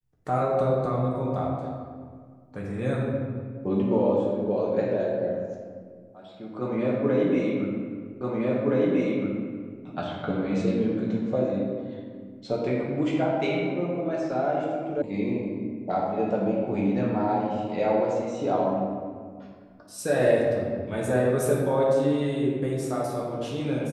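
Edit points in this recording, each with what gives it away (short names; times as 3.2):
8.21 repeat of the last 1.62 s
15.02 sound cut off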